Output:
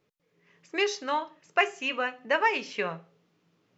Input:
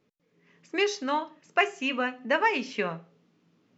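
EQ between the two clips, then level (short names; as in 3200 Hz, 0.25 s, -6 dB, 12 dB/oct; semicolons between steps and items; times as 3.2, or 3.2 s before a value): bell 240 Hz -10 dB 0.62 oct; 0.0 dB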